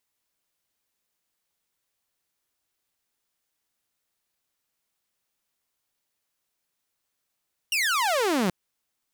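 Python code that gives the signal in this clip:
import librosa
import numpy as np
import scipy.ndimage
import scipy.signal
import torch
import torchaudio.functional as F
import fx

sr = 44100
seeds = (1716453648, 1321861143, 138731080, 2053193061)

y = fx.laser_zap(sr, level_db=-19.0, start_hz=2900.0, end_hz=170.0, length_s=0.78, wave='saw')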